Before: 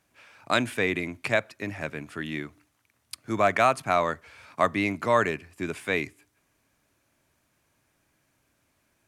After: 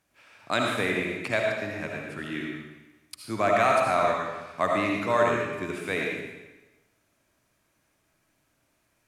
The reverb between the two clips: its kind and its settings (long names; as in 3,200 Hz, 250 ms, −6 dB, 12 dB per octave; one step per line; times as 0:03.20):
comb and all-pass reverb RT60 1.1 s, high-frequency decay 0.95×, pre-delay 35 ms, DRR −1 dB
level −3.5 dB